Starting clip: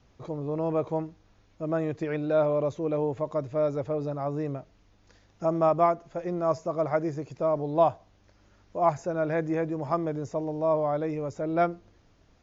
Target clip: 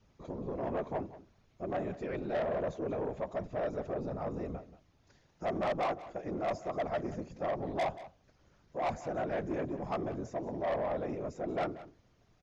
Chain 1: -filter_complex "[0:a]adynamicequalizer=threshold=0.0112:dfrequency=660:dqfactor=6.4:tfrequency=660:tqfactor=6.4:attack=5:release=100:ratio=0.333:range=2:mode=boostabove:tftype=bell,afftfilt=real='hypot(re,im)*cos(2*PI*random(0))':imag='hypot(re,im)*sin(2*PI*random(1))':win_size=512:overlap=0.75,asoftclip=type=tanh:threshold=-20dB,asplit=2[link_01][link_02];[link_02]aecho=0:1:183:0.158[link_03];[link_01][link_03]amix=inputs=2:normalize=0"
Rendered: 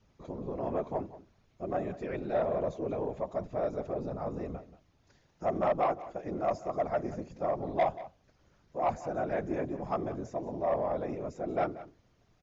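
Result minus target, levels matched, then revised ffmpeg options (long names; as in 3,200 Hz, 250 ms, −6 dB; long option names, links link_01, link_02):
soft clipping: distortion −7 dB
-filter_complex "[0:a]adynamicequalizer=threshold=0.0112:dfrequency=660:dqfactor=6.4:tfrequency=660:tqfactor=6.4:attack=5:release=100:ratio=0.333:range=2:mode=boostabove:tftype=bell,afftfilt=real='hypot(re,im)*cos(2*PI*random(0))':imag='hypot(re,im)*sin(2*PI*random(1))':win_size=512:overlap=0.75,asoftclip=type=tanh:threshold=-28dB,asplit=2[link_01][link_02];[link_02]aecho=0:1:183:0.158[link_03];[link_01][link_03]amix=inputs=2:normalize=0"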